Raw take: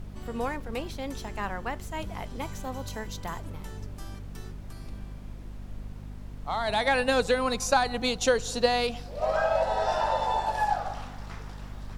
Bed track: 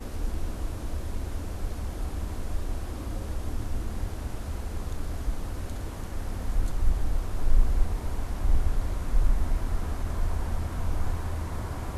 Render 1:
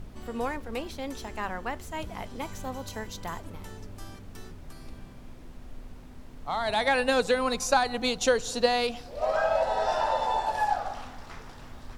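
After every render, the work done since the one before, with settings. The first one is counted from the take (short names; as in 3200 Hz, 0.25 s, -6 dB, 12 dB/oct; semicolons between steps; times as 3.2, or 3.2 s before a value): de-hum 50 Hz, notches 4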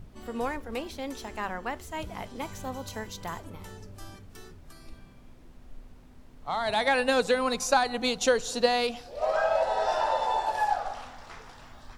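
noise print and reduce 6 dB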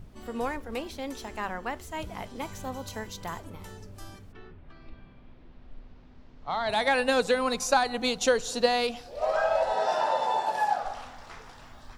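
4.31–6.68 LPF 2900 Hz -> 6000 Hz 24 dB/oct; 9.73–10.82 resonant high-pass 170 Hz, resonance Q 1.7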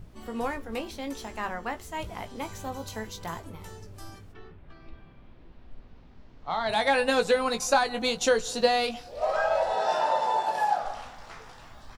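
doubler 18 ms -8 dB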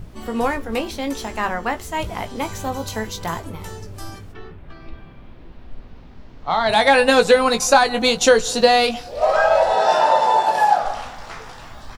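gain +10 dB; limiter -2 dBFS, peak gain reduction 2 dB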